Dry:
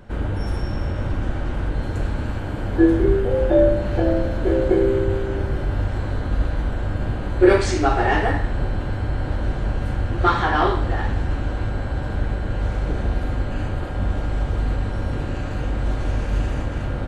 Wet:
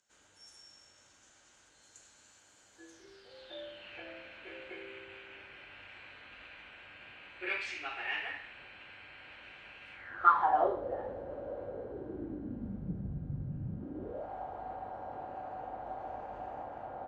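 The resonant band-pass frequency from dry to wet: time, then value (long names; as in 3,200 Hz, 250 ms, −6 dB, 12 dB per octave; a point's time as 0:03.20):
resonant band-pass, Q 5.9
0:02.85 6,800 Hz
0:03.97 2,500 Hz
0:09.93 2,500 Hz
0:10.69 540 Hz
0:11.67 540 Hz
0:13.09 150 Hz
0:13.67 150 Hz
0:14.30 760 Hz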